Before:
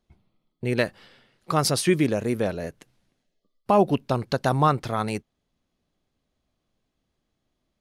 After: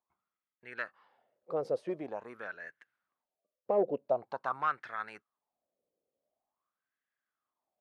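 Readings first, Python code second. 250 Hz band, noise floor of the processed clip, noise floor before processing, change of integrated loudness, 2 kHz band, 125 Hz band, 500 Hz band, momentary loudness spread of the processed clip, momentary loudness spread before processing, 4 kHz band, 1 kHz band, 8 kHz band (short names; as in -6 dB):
-18.5 dB, under -85 dBFS, -79 dBFS, -11.5 dB, -8.5 dB, -27.5 dB, -9.0 dB, 15 LU, 10 LU, under -25 dB, -11.5 dB, under -35 dB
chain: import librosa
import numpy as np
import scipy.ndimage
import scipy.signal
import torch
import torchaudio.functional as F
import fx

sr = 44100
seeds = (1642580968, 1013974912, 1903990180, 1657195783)

p1 = fx.rider(x, sr, range_db=10, speed_s=2.0)
p2 = x + (p1 * 10.0 ** (-2.5 / 20.0))
p3 = np.clip(p2, -10.0 ** (-7.0 / 20.0), 10.0 ** (-7.0 / 20.0))
p4 = fx.wah_lfo(p3, sr, hz=0.46, low_hz=490.0, high_hz=1700.0, q=5.9)
y = p4 * 10.0 ** (-3.5 / 20.0)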